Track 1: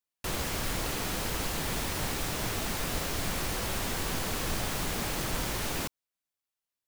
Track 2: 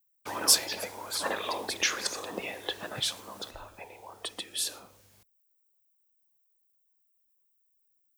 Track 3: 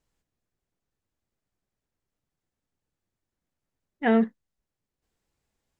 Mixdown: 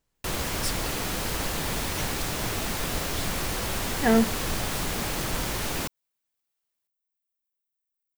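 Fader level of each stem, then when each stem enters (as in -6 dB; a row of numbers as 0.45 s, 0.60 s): +3.0 dB, -12.0 dB, +0.5 dB; 0.00 s, 0.15 s, 0.00 s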